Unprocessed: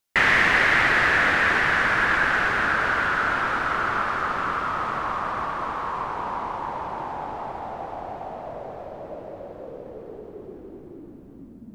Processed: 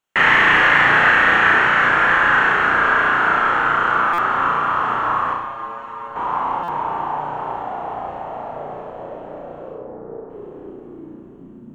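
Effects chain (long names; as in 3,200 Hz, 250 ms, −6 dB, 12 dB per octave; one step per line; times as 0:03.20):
0:05.33–0:06.16: stiff-string resonator 110 Hz, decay 0.25 s, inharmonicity 0.002
0:09.74–0:10.30: low-pass filter 1,700 Hz 24 dB per octave
flutter between parallel walls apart 5.8 metres, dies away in 0.7 s
convolution reverb RT60 3.5 s, pre-delay 3 ms, DRR 21.5 dB
buffer that repeats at 0:04.13/0:06.63, samples 256, times 8
level −3 dB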